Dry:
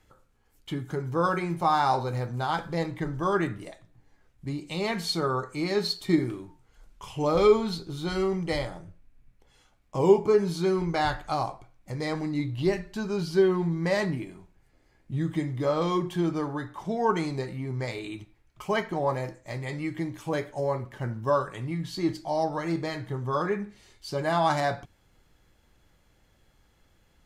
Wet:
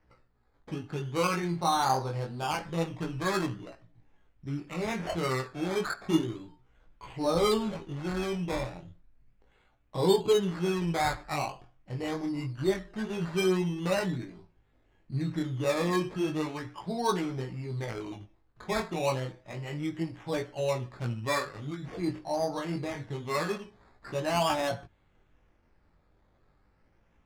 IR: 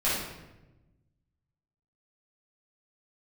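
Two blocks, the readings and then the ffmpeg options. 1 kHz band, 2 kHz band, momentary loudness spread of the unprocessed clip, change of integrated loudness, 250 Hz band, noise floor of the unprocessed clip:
−3.5 dB, −2.0 dB, 13 LU, −3.5 dB, −3.0 dB, −65 dBFS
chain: -af "acrusher=samples=12:mix=1:aa=0.000001:lfo=1:lforange=7.2:lforate=0.39,flanger=delay=16:depth=7.2:speed=0.29,adynamicsmooth=sensitivity=6:basefreq=4500"

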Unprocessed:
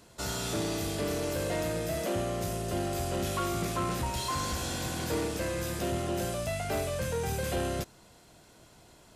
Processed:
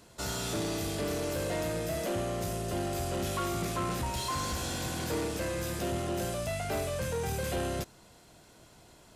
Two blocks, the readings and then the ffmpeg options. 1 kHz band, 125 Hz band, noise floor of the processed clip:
−1.0 dB, −1.0 dB, −58 dBFS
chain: -af "asoftclip=type=tanh:threshold=-24dB"

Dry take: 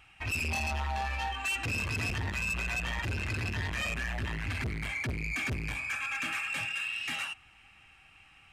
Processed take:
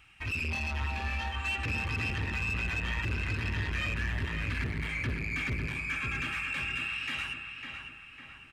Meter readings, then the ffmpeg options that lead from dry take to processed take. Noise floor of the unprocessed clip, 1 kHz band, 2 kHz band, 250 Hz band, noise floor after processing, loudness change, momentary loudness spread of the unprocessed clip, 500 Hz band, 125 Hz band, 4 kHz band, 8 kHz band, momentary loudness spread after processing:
−59 dBFS, −3.0 dB, +0.5 dB, +1.0 dB, −50 dBFS, 0.0 dB, 3 LU, −1.0 dB, +1.5 dB, −0.5 dB, −7.5 dB, 7 LU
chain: -filter_complex "[0:a]acrossover=split=4600[link_01][link_02];[link_02]acompressor=threshold=-55dB:ratio=4:attack=1:release=60[link_03];[link_01][link_03]amix=inputs=2:normalize=0,equalizer=frequency=730:width=2.3:gain=-8.5,asplit=2[link_04][link_05];[link_05]adelay=552,lowpass=frequency=3000:poles=1,volume=-5dB,asplit=2[link_06][link_07];[link_07]adelay=552,lowpass=frequency=3000:poles=1,volume=0.53,asplit=2[link_08][link_09];[link_09]adelay=552,lowpass=frequency=3000:poles=1,volume=0.53,asplit=2[link_10][link_11];[link_11]adelay=552,lowpass=frequency=3000:poles=1,volume=0.53,asplit=2[link_12][link_13];[link_13]adelay=552,lowpass=frequency=3000:poles=1,volume=0.53,asplit=2[link_14][link_15];[link_15]adelay=552,lowpass=frequency=3000:poles=1,volume=0.53,asplit=2[link_16][link_17];[link_17]adelay=552,lowpass=frequency=3000:poles=1,volume=0.53[link_18];[link_06][link_08][link_10][link_12][link_14][link_16][link_18]amix=inputs=7:normalize=0[link_19];[link_04][link_19]amix=inputs=2:normalize=0"

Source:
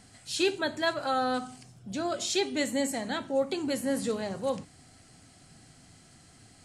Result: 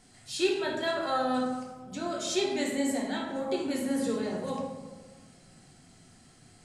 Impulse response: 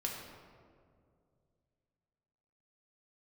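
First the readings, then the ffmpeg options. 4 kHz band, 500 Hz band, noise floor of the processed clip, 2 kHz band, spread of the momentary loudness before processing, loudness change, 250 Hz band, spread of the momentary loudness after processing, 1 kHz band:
−2.0 dB, −0.5 dB, −57 dBFS, −2.0 dB, 7 LU, −0.5 dB, +1.5 dB, 11 LU, −0.5 dB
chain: -filter_complex "[0:a]bandreject=frequency=4300:width=29[link_01];[1:a]atrim=start_sample=2205,asetrate=83790,aresample=44100[link_02];[link_01][link_02]afir=irnorm=-1:irlink=0,volume=2.5dB"

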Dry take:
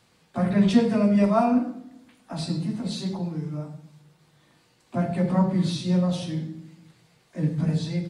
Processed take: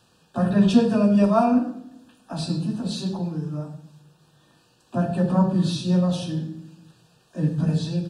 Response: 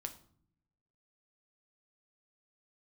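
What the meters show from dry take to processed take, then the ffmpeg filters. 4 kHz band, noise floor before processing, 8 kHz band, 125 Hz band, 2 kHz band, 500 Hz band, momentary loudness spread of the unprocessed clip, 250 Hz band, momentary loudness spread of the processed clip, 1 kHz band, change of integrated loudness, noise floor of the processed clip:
+2.0 dB, −63 dBFS, +2.0 dB, +2.0 dB, 0.0 dB, +2.0 dB, 16 LU, +2.0 dB, 16 LU, +2.0 dB, +2.0 dB, −61 dBFS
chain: -af "asuperstop=centerf=2100:order=20:qfactor=3.6,volume=2dB"

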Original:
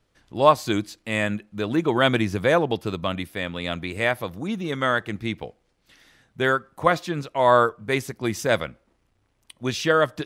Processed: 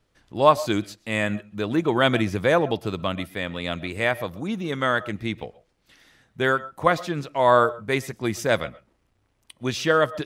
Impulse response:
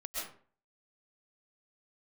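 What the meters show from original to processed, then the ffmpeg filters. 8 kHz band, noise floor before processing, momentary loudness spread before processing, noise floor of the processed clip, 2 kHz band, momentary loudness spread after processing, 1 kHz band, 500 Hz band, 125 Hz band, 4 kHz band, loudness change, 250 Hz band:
−0.5 dB, −69 dBFS, 11 LU, −69 dBFS, −0.5 dB, 11 LU, 0.0 dB, 0.0 dB, 0.0 dB, −0.5 dB, 0.0 dB, 0.0 dB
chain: -filter_complex "[0:a]asplit=2[link_01][link_02];[1:a]atrim=start_sample=2205,atrim=end_sample=6174,highshelf=frequency=4500:gain=-11[link_03];[link_02][link_03]afir=irnorm=-1:irlink=0,volume=-14.5dB[link_04];[link_01][link_04]amix=inputs=2:normalize=0,volume=-1dB"

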